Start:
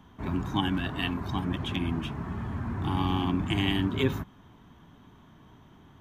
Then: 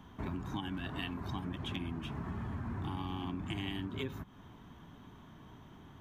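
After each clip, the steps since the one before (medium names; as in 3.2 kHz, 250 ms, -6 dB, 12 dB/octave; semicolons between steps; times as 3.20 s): compression 6:1, threshold -36 dBFS, peak gain reduction 15.5 dB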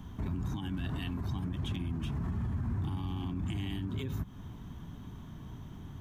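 bass shelf 210 Hz +9.5 dB; peak limiter -30.5 dBFS, peak gain reduction 8.5 dB; tone controls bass +4 dB, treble +8 dB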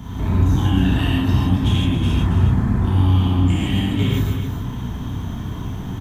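in parallel at -4.5 dB: saturation -37 dBFS, distortion -10 dB; on the sum: loudspeakers at several distances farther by 11 m -11 dB, 94 m -8 dB; gated-style reverb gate 190 ms flat, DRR -6.5 dB; trim +7 dB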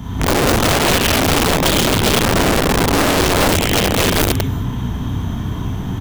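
integer overflow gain 14.5 dB; trim +5 dB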